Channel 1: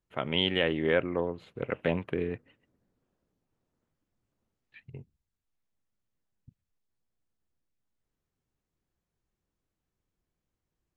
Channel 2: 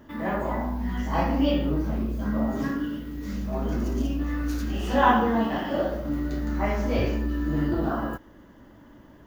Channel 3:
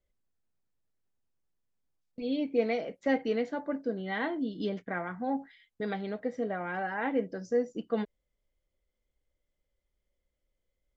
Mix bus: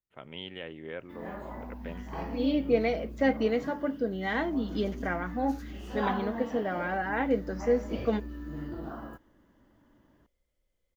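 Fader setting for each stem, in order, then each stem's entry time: −14.0, −13.0, +2.5 decibels; 0.00, 1.00, 0.15 seconds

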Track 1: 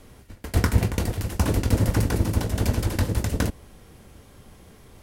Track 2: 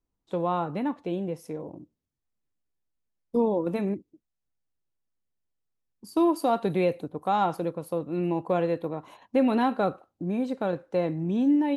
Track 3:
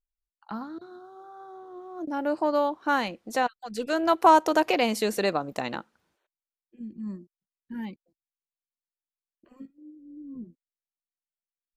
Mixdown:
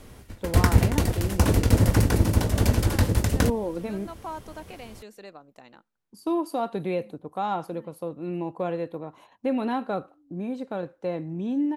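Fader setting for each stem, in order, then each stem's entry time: +2.0, −3.5, −19.0 decibels; 0.00, 0.10, 0.00 seconds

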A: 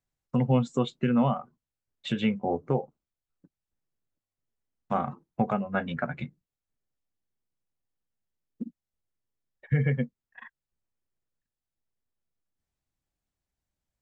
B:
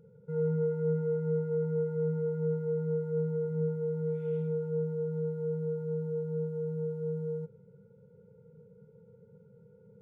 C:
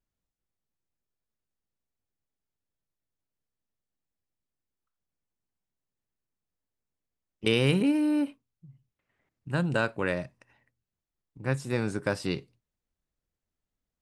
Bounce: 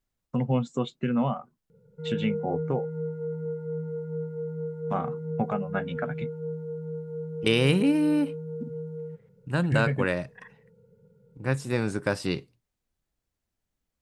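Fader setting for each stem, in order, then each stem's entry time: −2.0, −2.0, +2.0 decibels; 0.00, 1.70, 0.00 seconds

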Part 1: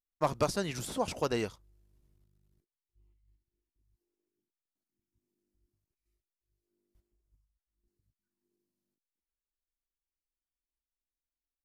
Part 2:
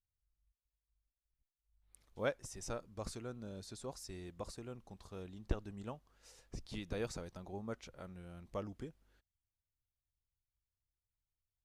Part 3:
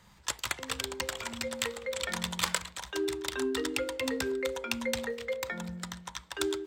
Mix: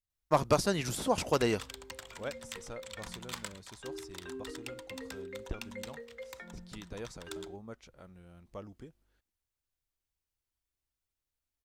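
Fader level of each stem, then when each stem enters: +3.0, −3.0, −11.5 decibels; 0.10, 0.00, 0.90 seconds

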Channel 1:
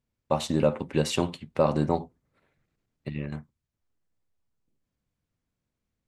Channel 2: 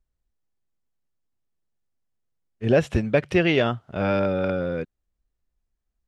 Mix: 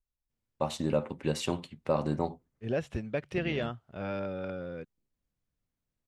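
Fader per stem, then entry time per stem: −5.5, −12.5 decibels; 0.30, 0.00 seconds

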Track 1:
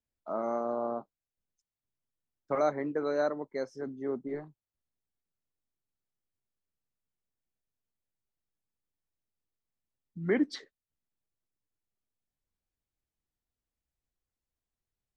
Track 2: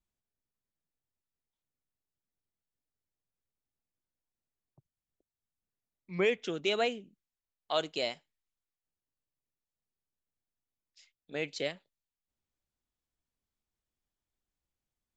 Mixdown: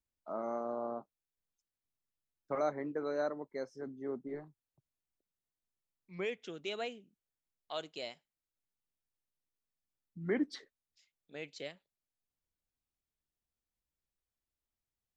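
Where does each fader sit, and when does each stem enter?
−5.5, −9.5 decibels; 0.00, 0.00 seconds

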